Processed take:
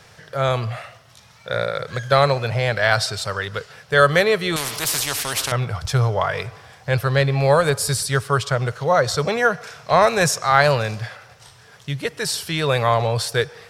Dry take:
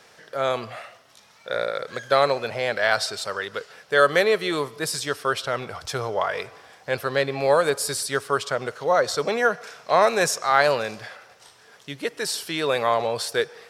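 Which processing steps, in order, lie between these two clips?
low shelf with overshoot 180 Hz +12.5 dB, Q 1.5
0:04.56–0:05.52: every bin compressed towards the loudest bin 4 to 1
level +3.5 dB

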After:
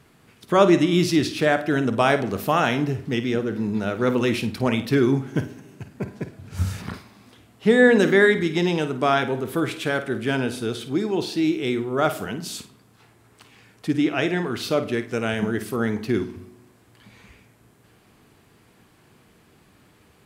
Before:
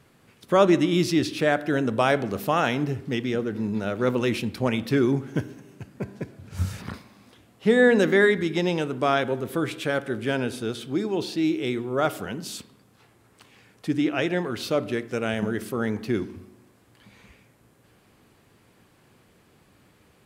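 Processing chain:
notch filter 540 Hz, Q 12
flutter between parallel walls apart 8.9 metres, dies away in 0.27 s
level +2.5 dB

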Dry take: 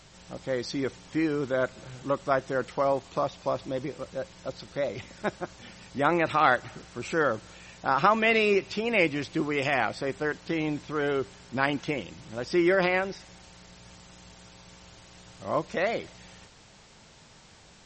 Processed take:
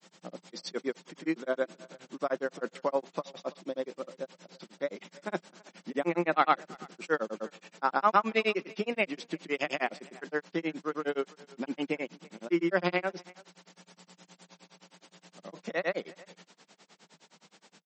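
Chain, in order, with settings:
granular cloud 100 ms, grains 9.6 per second, pitch spread up and down by 0 semitones
elliptic high-pass filter 170 Hz, stop band 40 dB
far-end echo of a speakerphone 330 ms, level −22 dB

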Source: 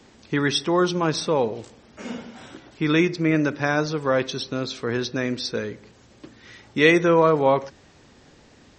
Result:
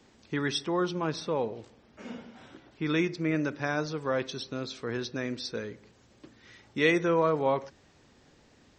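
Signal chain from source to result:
0:00.66–0:02.86: high-frequency loss of the air 80 metres
level −8 dB

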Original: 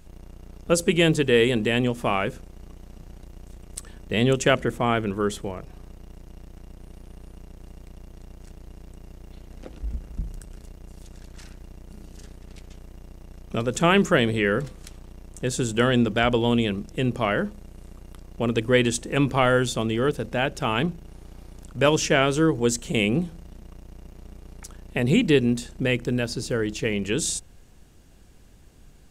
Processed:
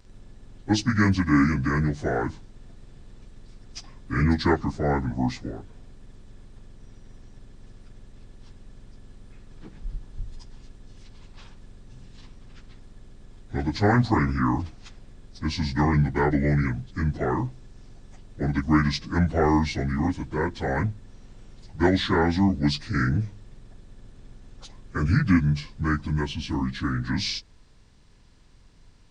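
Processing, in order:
phase-vocoder pitch shift without resampling −8.5 semitones

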